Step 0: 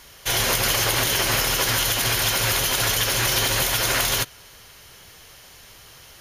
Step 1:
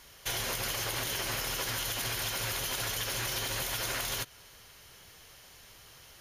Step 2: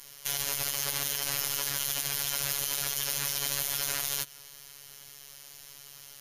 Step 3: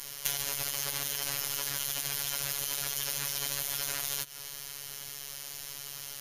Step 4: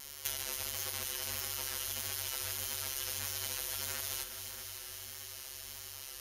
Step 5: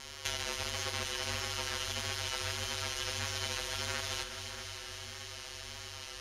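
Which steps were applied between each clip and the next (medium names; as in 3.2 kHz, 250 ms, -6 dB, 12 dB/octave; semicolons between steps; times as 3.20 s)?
compression, threshold -23 dBFS, peak gain reduction 6 dB; trim -7.5 dB
treble shelf 4.1 kHz +12 dB; peak limiter -19 dBFS, peak gain reduction 7 dB; robot voice 141 Hz
compression 10:1, threshold -33 dBFS, peak gain reduction 10 dB; trim +7 dB
frequency shift -47 Hz; vibrato 1.6 Hz 39 cents; echo whose repeats swap between lows and highs 136 ms, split 2.4 kHz, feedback 85%, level -8 dB; trim -5.5 dB
distance through air 100 m; trim +7.5 dB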